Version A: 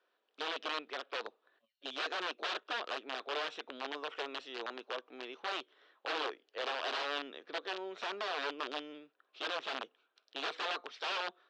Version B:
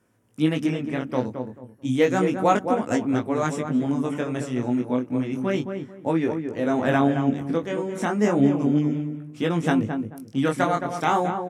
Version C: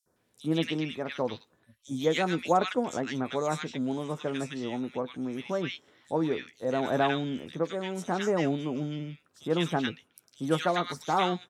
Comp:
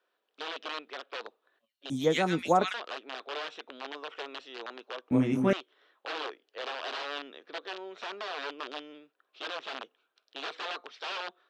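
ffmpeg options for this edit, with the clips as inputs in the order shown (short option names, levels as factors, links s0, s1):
-filter_complex "[0:a]asplit=3[s0][s1][s2];[s0]atrim=end=1.902[s3];[2:a]atrim=start=1.898:end=2.742[s4];[s1]atrim=start=2.738:end=5.112[s5];[1:a]atrim=start=5.108:end=5.532[s6];[s2]atrim=start=5.528[s7];[s3][s4]acrossfade=d=0.004:c1=hsin:c2=hsin[s8];[s8][s5]acrossfade=d=0.004:c1=hsin:c2=hsin[s9];[s9][s6]acrossfade=d=0.004:c1=hsin:c2=hsin[s10];[s10][s7]acrossfade=d=0.004:c1=hsin:c2=hsin"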